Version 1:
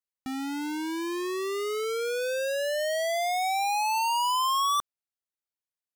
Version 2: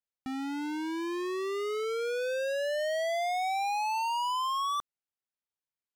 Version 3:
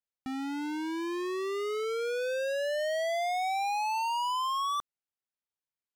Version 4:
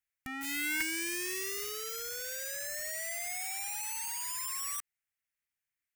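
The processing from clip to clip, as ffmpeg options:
-af "lowpass=f=3600:p=1,alimiter=level_in=1.5:limit=0.0631:level=0:latency=1,volume=0.668,volume=0.794"
-af anull
-filter_complex "[0:a]acrossover=split=2600[s0][s1];[s1]acompressor=threshold=0.00251:ratio=4:attack=1:release=60[s2];[s0][s2]amix=inputs=2:normalize=0,aeval=exprs='(mod(47.3*val(0)+1,2)-1)/47.3':c=same,equalizer=f=250:t=o:w=1:g=-11,equalizer=f=500:t=o:w=1:g=-11,equalizer=f=1000:t=o:w=1:g=-9,equalizer=f=2000:t=o:w=1:g=10,equalizer=f=4000:t=o:w=1:g=-9,volume=1.68"

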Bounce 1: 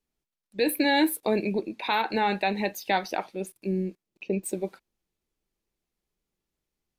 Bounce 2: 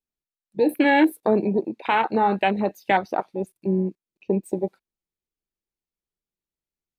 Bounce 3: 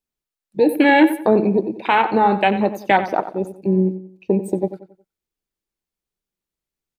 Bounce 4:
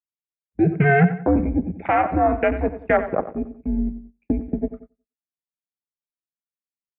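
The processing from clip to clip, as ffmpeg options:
-af "afwtdn=0.0316,volume=1.88"
-filter_complex "[0:a]asplit=2[s0][s1];[s1]adelay=91,lowpass=f=3700:p=1,volume=0.251,asplit=2[s2][s3];[s3]adelay=91,lowpass=f=3700:p=1,volume=0.37,asplit=2[s4][s5];[s5]adelay=91,lowpass=f=3700:p=1,volume=0.37,asplit=2[s6][s7];[s7]adelay=91,lowpass=f=3700:p=1,volume=0.37[s8];[s0][s2][s4][s6][s8]amix=inputs=5:normalize=0,volume=1.68"
-filter_complex "[0:a]asplit=2[s0][s1];[s1]adelay=110,highpass=300,lowpass=3400,asoftclip=type=hard:threshold=0.282,volume=0.0891[s2];[s0][s2]amix=inputs=2:normalize=0,highpass=f=220:t=q:w=0.5412,highpass=f=220:t=q:w=1.307,lowpass=f=2400:t=q:w=0.5176,lowpass=f=2400:t=q:w=0.7071,lowpass=f=2400:t=q:w=1.932,afreqshift=-140,agate=range=0.178:threshold=0.0112:ratio=16:detection=peak,volume=0.75"

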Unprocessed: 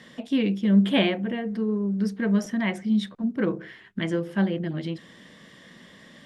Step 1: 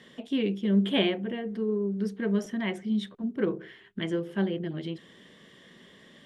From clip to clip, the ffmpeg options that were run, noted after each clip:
-af "equalizer=f=400:t=o:w=0.33:g=9,equalizer=f=3150:t=o:w=0.33:g=5,equalizer=f=5000:t=o:w=0.33:g=-3,volume=0.531"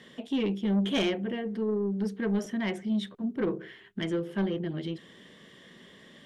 -af "asoftclip=type=tanh:threshold=0.0794,volume=1.12"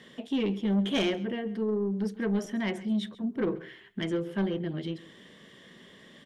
-af "aecho=1:1:135:0.112"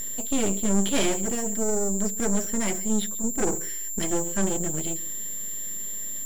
-af "aeval=exprs='val(0)+0.0224*sin(2*PI*7300*n/s)':c=same,aeval=exprs='max(val(0),0)':c=same,volume=2.37"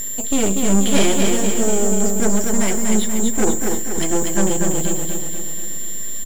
-af "aecho=1:1:241|482|723|964|1205|1446|1687:0.631|0.341|0.184|0.0994|0.0537|0.029|0.0156,volume=2"

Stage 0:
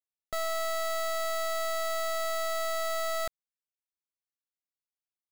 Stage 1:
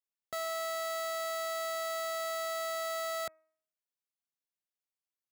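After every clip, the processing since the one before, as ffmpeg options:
-af "highpass=120,bandreject=f=317.1:t=h:w=4,bandreject=f=634.2:t=h:w=4,bandreject=f=951.3:t=h:w=4,bandreject=f=1268.4:t=h:w=4,bandreject=f=1585.5:t=h:w=4,bandreject=f=1902.6:t=h:w=4,bandreject=f=2219.7:t=h:w=4,bandreject=f=2536.8:t=h:w=4,volume=0.668"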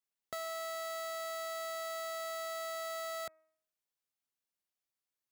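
-af "acompressor=threshold=0.00794:ratio=2,volume=1.12"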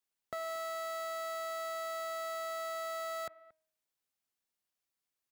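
-filter_complex "[0:a]acrossover=split=2400[s0][s1];[s0]aecho=1:1:229:0.106[s2];[s1]alimiter=level_in=7.5:limit=0.0631:level=0:latency=1:release=462,volume=0.133[s3];[s2][s3]amix=inputs=2:normalize=0,volume=1.26"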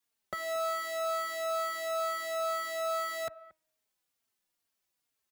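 -filter_complex "[0:a]asplit=2[s0][s1];[s1]adelay=3.7,afreqshift=-2.2[s2];[s0][s2]amix=inputs=2:normalize=1,volume=2.66"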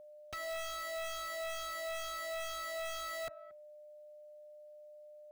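-af "aeval=exprs='val(0)+0.00398*sin(2*PI*600*n/s)':c=same,aeval=exprs='0.0251*(abs(mod(val(0)/0.0251+3,4)-2)-1)':c=same,volume=0.668"

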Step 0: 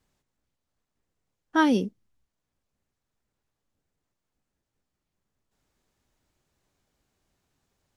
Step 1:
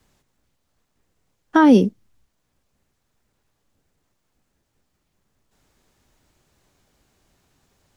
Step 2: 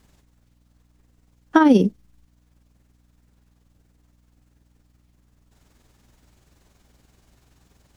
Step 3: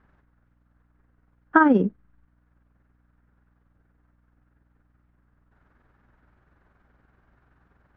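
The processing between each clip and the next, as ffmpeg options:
-filter_complex "[0:a]acrossover=split=190|1600[s0][s1][s2];[s2]acompressor=threshold=0.01:ratio=6[s3];[s0][s1][s3]amix=inputs=3:normalize=0,alimiter=level_in=4.73:limit=0.891:release=50:level=0:latency=1,volume=0.75"
-af "acompressor=threshold=0.224:ratio=6,aeval=exprs='val(0)+0.000794*(sin(2*PI*60*n/s)+sin(2*PI*2*60*n/s)/2+sin(2*PI*3*60*n/s)/3+sin(2*PI*4*60*n/s)/4+sin(2*PI*5*60*n/s)/5)':c=same,tremolo=f=21:d=0.462,volume=1.78"
-af "lowpass=f=1500:t=q:w=2.9,volume=0.596"

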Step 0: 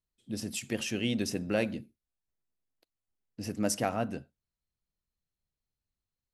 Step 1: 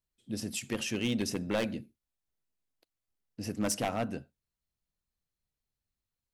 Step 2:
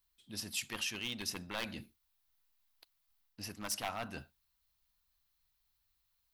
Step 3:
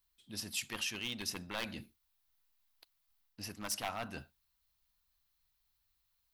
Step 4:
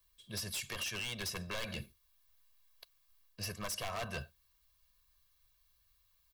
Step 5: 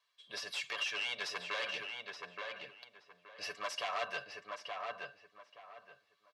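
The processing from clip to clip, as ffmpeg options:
-af "aeval=exprs='0.075*(abs(mod(val(0)/0.075+3,4)-2)-1)':c=same"
-af "highshelf=f=9400:g=10.5,areverse,acompressor=threshold=0.00891:ratio=4,areverse,equalizer=f=125:t=o:w=1:g=-8,equalizer=f=250:t=o:w=1:g=-8,equalizer=f=500:t=o:w=1:g=-10,equalizer=f=1000:t=o:w=1:g=5,equalizer=f=4000:t=o:w=1:g=5,equalizer=f=8000:t=o:w=1:g=-6,volume=2.11"
-af anull
-filter_complex "[0:a]aecho=1:1:1.8:0.88,acrossover=split=100[s0][s1];[s1]alimiter=level_in=2:limit=0.0631:level=0:latency=1:release=110,volume=0.501[s2];[s0][s2]amix=inputs=2:normalize=0,aeval=exprs='0.0168*(abs(mod(val(0)/0.0168+3,4)-2)-1)':c=same,volume=1.5"
-filter_complex "[0:a]highpass=580,lowpass=3800,aecho=1:1:6.9:0.5,asplit=2[s0][s1];[s1]adelay=874,lowpass=f=2600:p=1,volume=0.668,asplit=2[s2][s3];[s3]adelay=874,lowpass=f=2600:p=1,volume=0.26,asplit=2[s4][s5];[s5]adelay=874,lowpass=f=2600:p=1,volume=0.26,asplit=2[s6][s7];[s7]adelay=874,lowpass=f=2600:p=1,volume=0.26[s8];[s0][s2][s4][s6][s8]amix=inputs=5:normalize=0,volume=1.5"

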